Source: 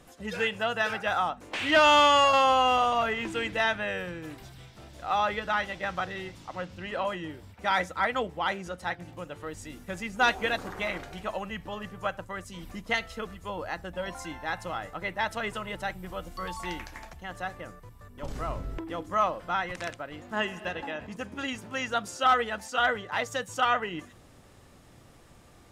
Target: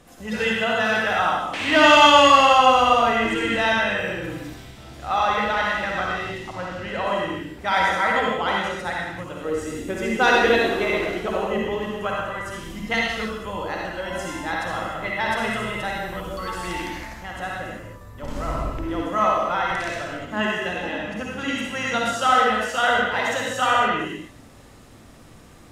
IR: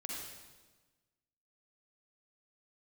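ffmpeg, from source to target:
-filter_complex "[0:a]asettb=1/sr,asplit=3[a][b][c];[a]atrim=end=9.454[d];[b]atrim=start=9.45:end=11.91,asetpts=PTS-STARTPTS,afade=t=in:d=0.004:c=qsin,afade=t=out:st=2.456:d=0.004:c=qsin,equalizer=f=400:t=o:w=0.58:g=12.5[e];[c]atrim=start=11.906[f];[d][e]acrossfade=d=0.004:c1=hsin:c2=qsin[g];[g][f]acrossfade=d=0.004:c1=qsin:c2=hsin[h];[1:a]atrim=start_sample=2205,afade=t=out:st=0.34:d=0.01,atrim=end_sample=15435,asetrate=41013,aresample=44100[i];[h][i]afir=irnorm=-1:irlink=0,volume=7.5dB"

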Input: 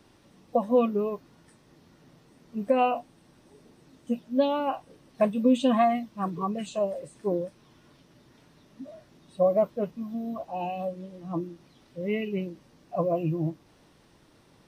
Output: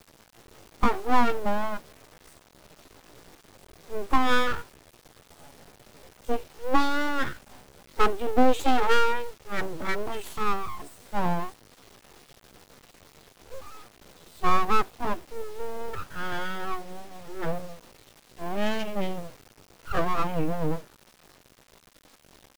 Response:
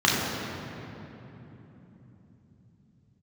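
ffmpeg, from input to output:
-af "atempo=0.65,aeval=exprs='abs(val(0))':c=same,acrusher=bits=6:dc=4:mix=0:aa=0.000001,volume=4dB"

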